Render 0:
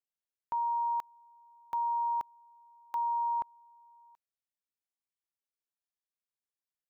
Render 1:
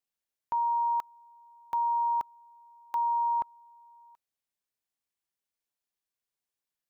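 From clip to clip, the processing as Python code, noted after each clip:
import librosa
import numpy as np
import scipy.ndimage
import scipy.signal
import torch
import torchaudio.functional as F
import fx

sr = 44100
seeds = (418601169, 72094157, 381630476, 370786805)

y = fx.notch(x, sr, hz=1300.0, q=18.0)
y = y * librosa.db_to_amplitude(3.5)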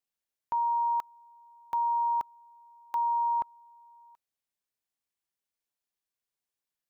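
y = x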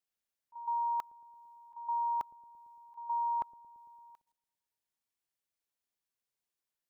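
y = fx.auto_swell(x, sr, attack_ms=443.0)
y = fx.echo_wet_lowpass(y, sr, ms=113, feedback_pct=64, hz=410.0, wet_db=-15.5)
y = fx.level_steps(y, sr, step_db=12)
y = y * librosa.db_to_amplitude(4.0)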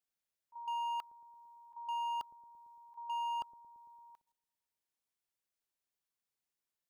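y = np.clip(10.0 ** (33.0 / 20.0) * x, -1.0, 1.0) / 10.0 ** (33.0 / 20.0)
y = y * librosa.db_to_amplitude(-2.0)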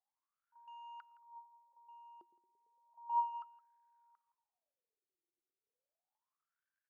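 y = fx.dmg_crackle(x, sr, seeds[0], per_s=430.0, level_db=-70.0)
y = fx.wah_lfo(y, sr, hz=0.33, low_hz=350.0, high_hz=1600.0, q=14.0)
y = y + 10.0 ** (-18.0 / 20.0) * np.pad(y, (int(166 * sr / 1000.0), 0))[:len(y)]
y = y * librosa.db_to_amplitude(8.0)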